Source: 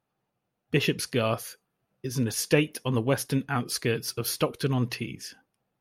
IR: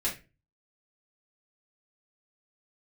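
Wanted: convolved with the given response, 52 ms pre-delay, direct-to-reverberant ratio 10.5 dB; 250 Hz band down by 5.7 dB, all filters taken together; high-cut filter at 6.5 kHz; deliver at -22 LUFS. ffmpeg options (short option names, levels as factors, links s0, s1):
-filter_complex "[0:a]lowpass=6500,equalizer=f=250:t=o:g=-7.5,asplit=2[s0][s1];[1:a]atrim=start_sample=2205,adelay=52[s2];[s1][s2]afir=irnorm=-1:irlink=0,volume=0.15[s3];[s0][s3]amix=inputs=2:normalize=0,volume=2.51"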